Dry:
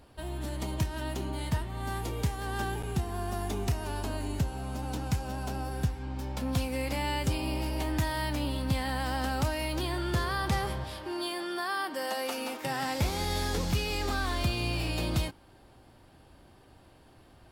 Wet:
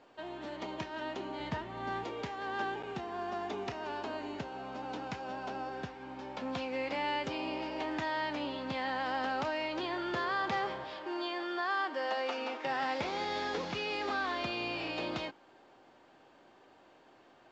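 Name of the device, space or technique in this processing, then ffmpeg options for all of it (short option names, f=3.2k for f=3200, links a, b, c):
telephone: -filter_complex "[0:a]asettb=1/sr,asplit=3[a][b][c];[a]atrim=end=1.394[d];[b]atrim=start=1.39:end=2.04,asetpts=PTS-STARTPTS,afade=t=in:d=0.004:c=qsin,afade=t=out:st=0.646:d=0.004:c=qsin,lowshelf=f=210:g=9.5[e];[c]atrim=start=2.036[f];[d][e]acrossfade=d=0.004:c1=hsin:c2=qsin[g];[g][f]acrossfade=d=0.004:c1=qsin:c2=hsin,highpass=340,lowpass=3.2k" -ar 16000 -c:a pcm_mulaw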